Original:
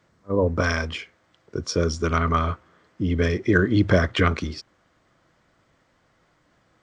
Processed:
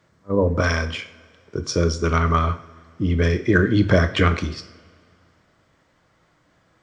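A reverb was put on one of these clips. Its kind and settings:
coupled-rooms reverb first 0.51 s, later 2.3 s, from −18 dB, DRR 8.5 dB
level +1.5 dB

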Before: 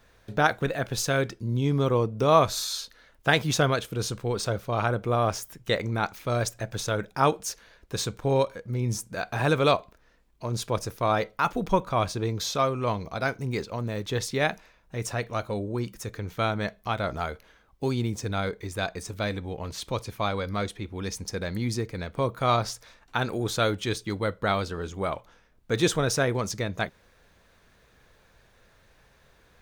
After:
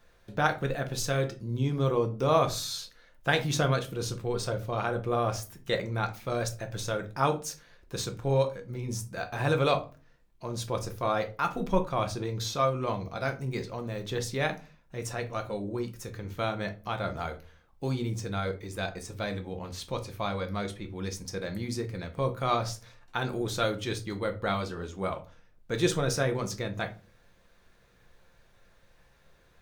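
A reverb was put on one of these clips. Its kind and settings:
rectangular room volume 150 cubic metres, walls furnished, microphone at 0.85 metres
level −5 dB

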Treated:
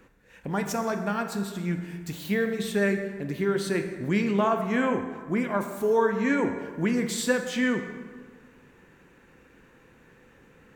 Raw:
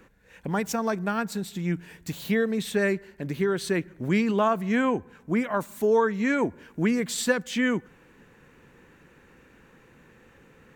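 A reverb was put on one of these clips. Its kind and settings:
dense smooth reverb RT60 1.6 s, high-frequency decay 0.6×, pre-delay 0 ms, DRR 5 dB
level −2 dB

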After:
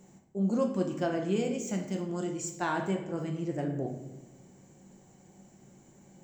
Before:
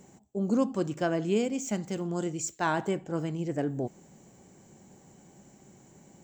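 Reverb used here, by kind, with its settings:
rectangular room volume 350 cubic metres, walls mixed, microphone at 0.9 metres
level −4.5 dB

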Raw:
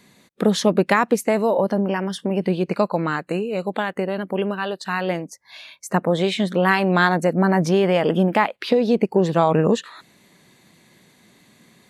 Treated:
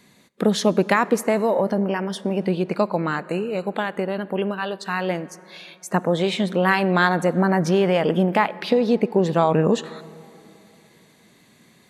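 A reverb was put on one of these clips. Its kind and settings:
dense smooth reverb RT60 3.1 s, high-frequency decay 0.45×, DRR 18 dB
level −1 dB

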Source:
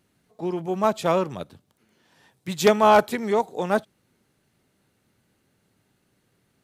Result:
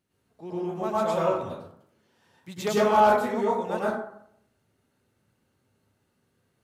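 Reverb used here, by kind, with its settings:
dense smooth reverb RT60 0.69 s, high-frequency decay 0.45×, pre-delay 90 ms, DRR −7.5 dB
level −12 dB

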